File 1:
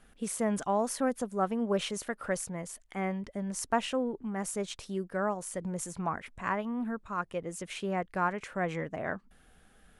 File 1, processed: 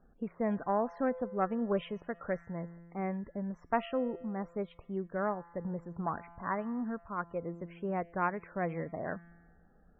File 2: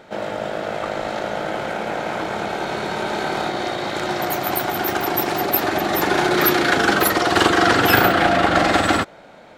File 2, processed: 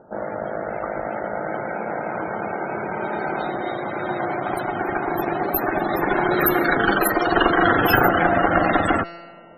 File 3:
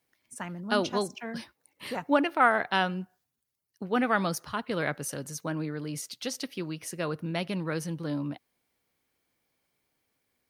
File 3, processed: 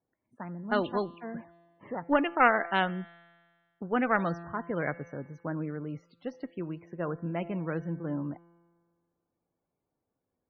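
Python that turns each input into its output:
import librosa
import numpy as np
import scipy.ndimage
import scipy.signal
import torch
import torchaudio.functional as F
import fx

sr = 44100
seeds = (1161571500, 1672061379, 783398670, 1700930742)

y = fx.env_lowpass(x, sr, base_hz=920.0, full_db=-14.5)
y = fx.cheby_harmonics(y, sr, harmonics=(2, 4, 6, 8), levels_db=(-19, -28, -12, -20), full_scale_db=-1.0)
y = fx.comb_fb(y, sr, f0_hz=170.0, decay_s=1.7, harmonics='all', damping=0.0, mix_pct=60)
y = fx.spec_topn(y, sr, count=64)
y = y * librosa.db_to_amplitude(6.0)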